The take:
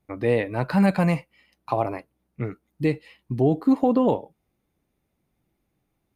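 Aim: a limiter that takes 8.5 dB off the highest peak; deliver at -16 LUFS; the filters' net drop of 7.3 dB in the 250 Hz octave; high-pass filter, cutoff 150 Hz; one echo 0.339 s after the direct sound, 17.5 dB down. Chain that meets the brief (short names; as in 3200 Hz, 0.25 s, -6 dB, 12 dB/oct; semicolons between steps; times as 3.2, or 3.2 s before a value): HPF 150 Hz; bell 250 Hz -8.5 dB; limiter -18 dBFS; echo 0.339 s -17.5 dB; gain +15 dB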